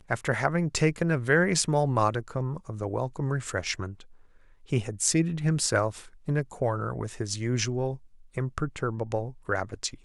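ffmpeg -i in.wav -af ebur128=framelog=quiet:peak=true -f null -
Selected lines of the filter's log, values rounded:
Integrated loudness:
  I:         -28.1 LUFS
  Threshold: -38.5 LUFS
Loudness range:
  LRA:         4.9 LU
  Threshold: -48.8 LUFS
  LRA low:   -31.3 LUFS
  LRA high:  -26.4 LUFS
True peak:
  Peak:       -6.0 dBFS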